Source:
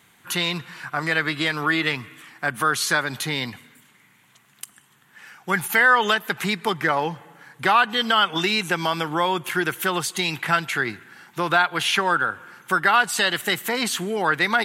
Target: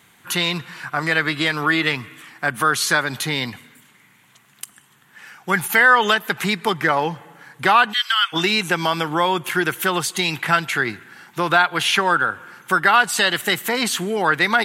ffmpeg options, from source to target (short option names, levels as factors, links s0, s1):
-filter_complex "[0:a]asplit=3[s0][s1][s2];[s0]afade=t=out:st=7.92:d=0.02[s3];[s1]highpass=f=1400:w=0.5412,highpass=f=1400:w=1.3066,afade=t=in:st=7.92:d=0.02,afade=t=out:st=8.32:d=0.02[s4];[s2]afade=t=in:st=8.32:d=0.02[s5];[s3][s4][s5]amix=inputs=3:normalize=0,volume=1.41"